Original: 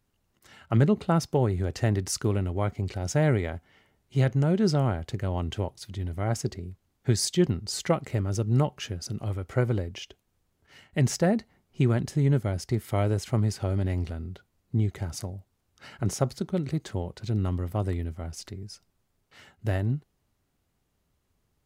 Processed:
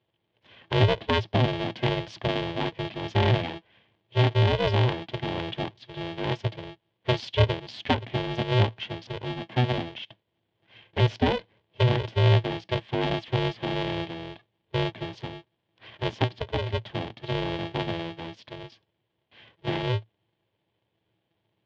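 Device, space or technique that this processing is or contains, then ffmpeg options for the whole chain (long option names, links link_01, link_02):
ring modulator pedal into a guitar cabinet: -af "highpass=frequency=63:width=0.5412,highpass=frequency=63:width=1.3066,lowpass=9600,highshelf=frequency=6300:gain=-9.5,aeval=exprs='val(0)*sgn(sin(2*PI*250*n/s))':channel_layout=same,highpass=87,equalizer=frequency=110:width_type=q:width=4:gain=10,equalizer=frequency=160:width_type=q:width=4:gain=-7,equalizer=frequency=230:width_type=q:width=4:gain=8,equalizer=frequency=370:width_type=q:width=4:gain=-4,equalizer=frequency=1300:width_type=q:width=4:gain=-10,equalizer=frequency=3200:width_type=q:width=4:gain=8,lowpass=frequency=3900:width=0.5412,lowpass=frequency=3900:width=1.3066"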